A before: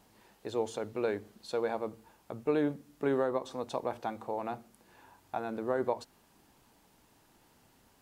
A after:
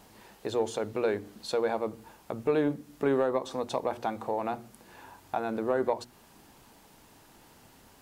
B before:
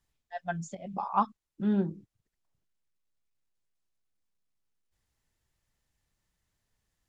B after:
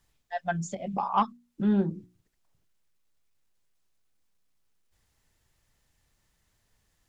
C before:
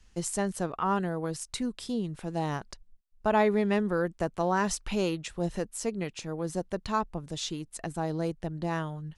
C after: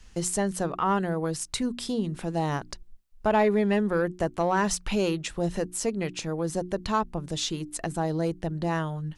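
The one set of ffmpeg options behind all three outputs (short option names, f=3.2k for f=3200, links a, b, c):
-filter_complex "[0:a]bandreject=f=60:t=h:w=6,bandreject=f=120:t=h:w=6,bandreject=f=180:t=h:w=6,bandreject=f=240:t=h:w=6,bandreject=f=300:t=h:w=6,bandreject=f=360:t=h:w=6,asplit=2[a][b];[b]acompressor=threshold=-41dB:ratio=6,volume=-0.5dB[c];[a][c]amix=inputs=2:normalize=0,asoftclip=type=tanh:threshold=-15.5dB,volume=2.5dB"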